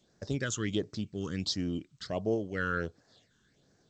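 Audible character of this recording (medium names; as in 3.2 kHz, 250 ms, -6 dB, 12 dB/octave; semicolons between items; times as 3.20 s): phasing stages 8, 1.4 Hz, lowest notch 630–3200 Hz; G.722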